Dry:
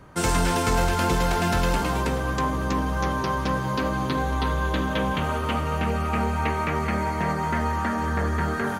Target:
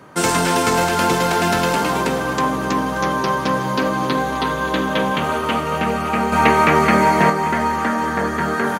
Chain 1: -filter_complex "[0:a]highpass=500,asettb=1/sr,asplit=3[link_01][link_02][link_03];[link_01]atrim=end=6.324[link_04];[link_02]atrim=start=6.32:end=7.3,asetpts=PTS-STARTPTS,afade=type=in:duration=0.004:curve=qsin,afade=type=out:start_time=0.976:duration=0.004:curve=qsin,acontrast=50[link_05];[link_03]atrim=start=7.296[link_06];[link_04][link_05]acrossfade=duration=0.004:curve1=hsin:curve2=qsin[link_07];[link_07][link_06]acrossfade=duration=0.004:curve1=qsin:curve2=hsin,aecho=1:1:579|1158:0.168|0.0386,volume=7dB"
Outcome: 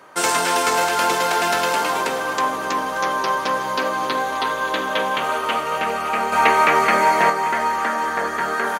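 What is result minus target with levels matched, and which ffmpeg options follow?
250 Hz band −9.5 dB
-filter_complex "[0:a]highpass=180,asettb=1/sr,asplit=3[link_01][link_02][link_03];[link_01]atrim=end=6.324[link_04];[link_02]atrim=start=6.32:end=7.3,asetpts=PTS-STARTPTS,afade=type=in:duration=0.004:curve=qsin,afade=type=out:start_time=0.976:duration=0.004:curve=qsin,acontrast=50[link_05];[link_03]atrim=start=7.296[link_06];[link_04][link_05]acrossfade=duration=0.004:curve1=hsin:curve2=qsin[link_07];[link_07][link_06]acrossfade=duration=0.004:curve1=qsin:curve2=hsin,aecho=1:1:579|1158:0.168|0.0386,volume=7dB"

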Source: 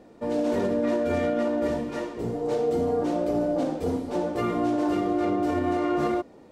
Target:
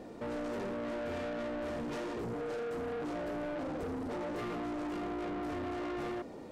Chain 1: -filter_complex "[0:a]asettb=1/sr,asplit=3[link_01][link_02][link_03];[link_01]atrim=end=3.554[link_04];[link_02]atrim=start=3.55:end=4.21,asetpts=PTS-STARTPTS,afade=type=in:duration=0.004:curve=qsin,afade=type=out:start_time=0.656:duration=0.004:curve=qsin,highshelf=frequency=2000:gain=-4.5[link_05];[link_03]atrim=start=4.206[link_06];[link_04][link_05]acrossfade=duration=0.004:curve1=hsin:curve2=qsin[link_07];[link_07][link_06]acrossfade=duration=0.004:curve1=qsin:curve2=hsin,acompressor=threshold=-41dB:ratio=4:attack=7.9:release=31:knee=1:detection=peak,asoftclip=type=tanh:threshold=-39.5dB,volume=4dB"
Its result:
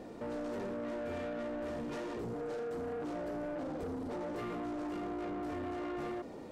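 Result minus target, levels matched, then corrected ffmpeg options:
downward compressor: peak gain reduction +4.5 dB
-filter_complex "[0:a]asettb=1/sr,asplit=3[link_01][link_02][link_03];[link_01]atrim=end=3.554[link_04];[link_02]atrim=start=3.55:end=4.21,asetpts=PTS-STARTPTS,afade=type=in:duration=0.004:curve=qsin,afade=type=out:start_time=0.656:duration=0.004:curve=qsin,highshelf=frequency=2000:gain=-4.5[link_05];[link_03]atrim=start=4.206[link_06];[link_04][link_05]acrossfade=duration=0.004:curve1=hsin:curve2=qsin[link_07];[link_07][link_06]acrossfade=duration=0.004:curve1=qsin:curve2=hsin,acompressor=threshold=-35dB:ratio=4:attack=7.9:release=31:knee=1:detection=peak,asoftclip=type=tanh:threshold=-39.5dB,volume=4dB"

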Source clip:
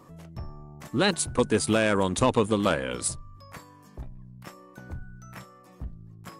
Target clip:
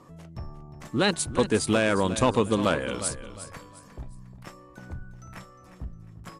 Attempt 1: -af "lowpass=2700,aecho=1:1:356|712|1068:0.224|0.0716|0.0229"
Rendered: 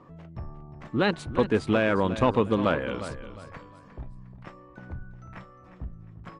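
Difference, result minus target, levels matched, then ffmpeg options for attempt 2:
8,000 Hz band −18.5 dB
-af "lowpass=11000,aecho=1:1:356|712|1068:0.224|0.0716|0.0229"

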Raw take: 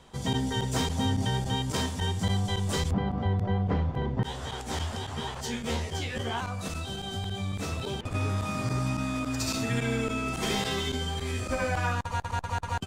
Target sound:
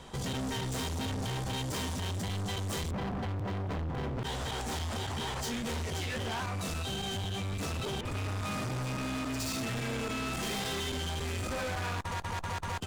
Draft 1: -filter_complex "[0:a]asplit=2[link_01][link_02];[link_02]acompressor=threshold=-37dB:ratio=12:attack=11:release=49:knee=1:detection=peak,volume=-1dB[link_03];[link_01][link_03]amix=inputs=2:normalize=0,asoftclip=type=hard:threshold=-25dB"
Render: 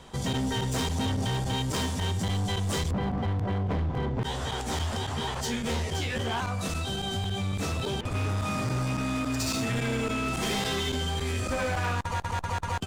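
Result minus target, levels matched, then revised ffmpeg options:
hard clipping: distortion −6 dB
-filter_complex "[0:a]asplit=2[link_01][link_02];[link_02]acompressor=threshold=-37dB:ratio=12:attack=11:release=49:knee=1:detection=peak,volume=-1dB[link_03];[link_01][link_03]amix=inputs=2:normalize=0,asoftclip=type=hard:threshold=-33dB"

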